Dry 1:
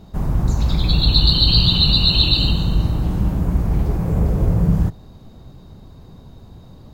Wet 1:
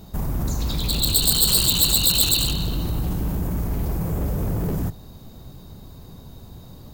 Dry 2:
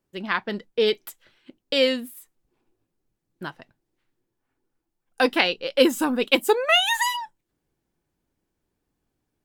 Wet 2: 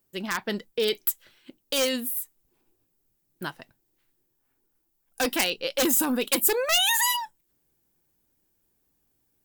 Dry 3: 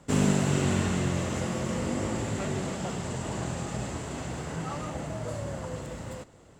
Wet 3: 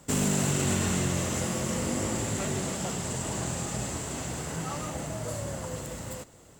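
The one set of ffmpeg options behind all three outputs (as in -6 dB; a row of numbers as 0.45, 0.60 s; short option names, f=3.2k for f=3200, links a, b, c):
-af "aeval=exprs='0.224*(abs(mod(val(0)/0.224+3,4)-2)-1)':c=same,alimiter=limit=-18dB:level=0:latency=1:release=23,aemphasis=mode=production:type=50fm"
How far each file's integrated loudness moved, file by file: -3.5, -2.0, +0.5 LU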